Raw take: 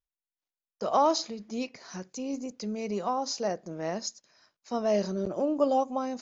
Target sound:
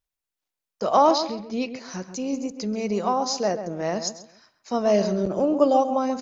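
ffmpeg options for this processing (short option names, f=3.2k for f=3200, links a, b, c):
-filter_complex "[0:a]asettb=1/sr,asplit=3[a][b][c];[a]atrim=end=1.114[d];[b]atrim=start=1.11:end=1.75,asetpts=PTS-STARTPTS,afade=t=in:d=0.004:c=qsin,afade=t=out:st=0.636:d=0.004:c=qsin,lowpass=f=5.2k:w=0.5412,lowpass=f=5.2k:w=1.3066[e];[c]atrim=start=1.746[f];[d][e]acrossfade=d=0.004:c1=hsin:c2=qsin[g];[g][f]acrossfade=d=0.004:c1=qsin:c2=hsin,asplit=2[h][i];[i]adelay=134,lowpass=f=2k:p=1,volume=-9.5dB,asplit=2[j][k];[k]adelay=134,lowpass=f=2k:p=1,volume=0.31,asplit=2[l][m];[m]adelay=134,lowpass=f=2k:p=1,volume=0.31[n];[h][j][l][n]amix=inputs=4:normalize=0,volume=6dB"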